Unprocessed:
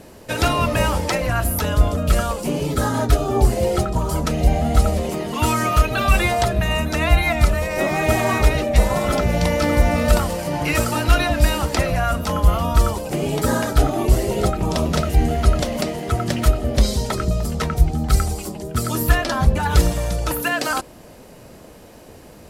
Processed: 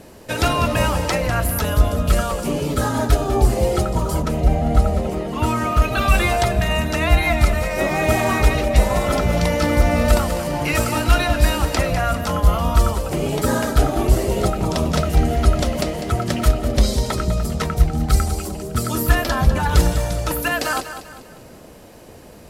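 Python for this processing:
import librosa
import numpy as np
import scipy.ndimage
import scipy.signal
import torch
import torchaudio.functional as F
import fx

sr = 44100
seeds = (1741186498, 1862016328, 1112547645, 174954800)

y = fx.high_shelf(x, sr, hz=2400.0, db=-9.0, at=(4.22, 5.82))
y = fx.echo_feedback(y, sr, ms=199, feedback_pct=40, wet_db=-11)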